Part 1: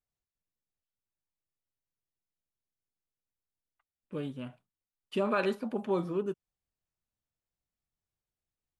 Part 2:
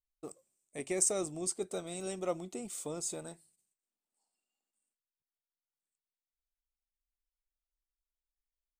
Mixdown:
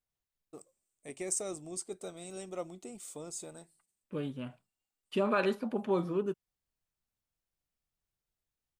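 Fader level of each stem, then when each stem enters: 0.0, −4.5 decibels; 0.00, 0.30 seconds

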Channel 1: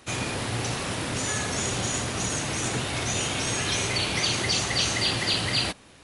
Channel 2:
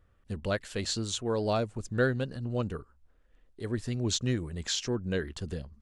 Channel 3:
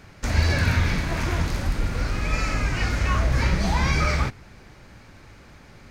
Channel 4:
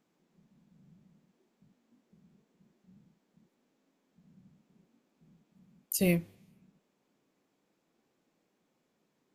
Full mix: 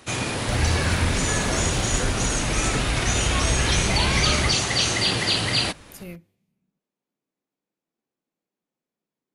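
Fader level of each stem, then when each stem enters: +3.0, −7.0, −2.5, −12.0 decibels; 0.00, 0.00, 0.25, 0.00 seconds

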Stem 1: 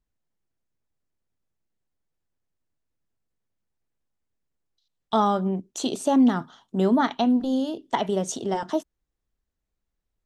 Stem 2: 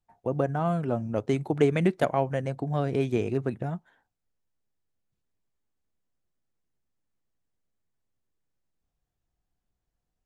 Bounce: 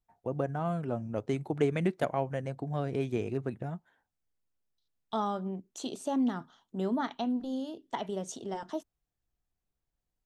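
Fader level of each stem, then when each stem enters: −10.5, −5.5 decibels; 0.00, 0.00 seconds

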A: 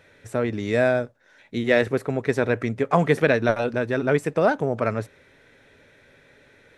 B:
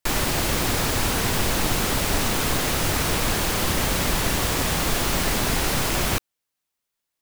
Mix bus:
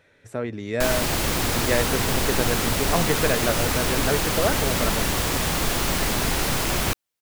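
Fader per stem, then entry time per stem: −4.5, −0.5 decibels; 0.00, 0.75 seconds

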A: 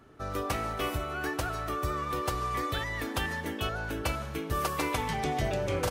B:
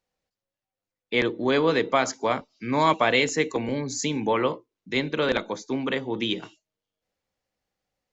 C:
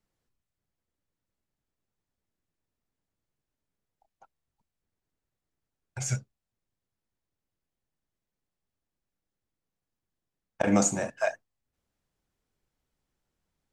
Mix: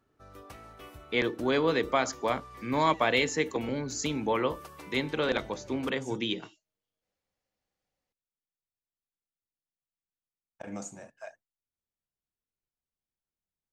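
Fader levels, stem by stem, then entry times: −16.5, −4.5, −16.5 decibels; 0.00, 0.00, 0.00 seconds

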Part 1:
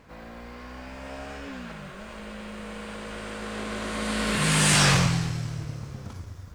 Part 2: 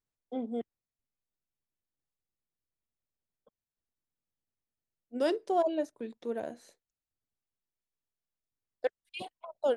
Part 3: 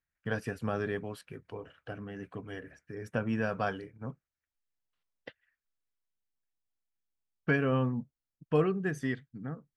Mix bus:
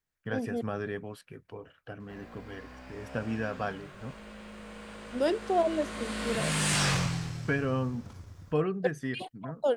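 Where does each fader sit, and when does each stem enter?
−7.5, +1.5, −1.5 decibels; 2.00, 0.00, 0.00 seconds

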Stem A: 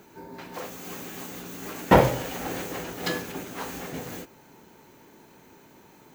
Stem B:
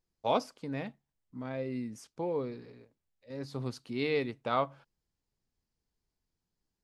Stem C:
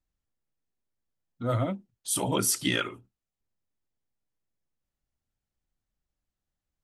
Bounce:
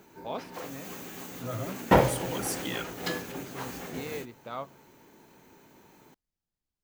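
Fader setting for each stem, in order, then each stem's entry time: −3.5, −8.0, −8.5 decibels; 0.00, 0.00, 0.00 seconds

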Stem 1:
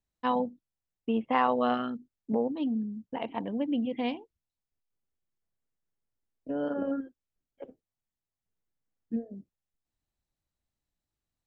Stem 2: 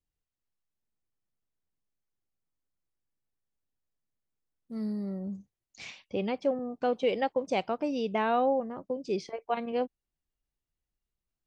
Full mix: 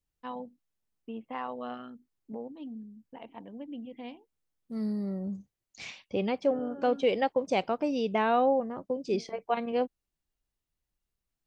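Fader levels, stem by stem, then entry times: −11.5, +1.5 decibels; 0.00, 0.00 seconds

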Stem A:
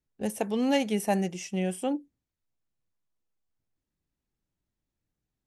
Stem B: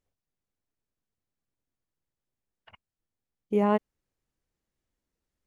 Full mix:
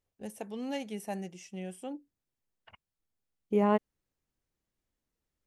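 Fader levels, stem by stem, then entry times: −11.0, −2.0 decibels; 0.00, 0.00 seconds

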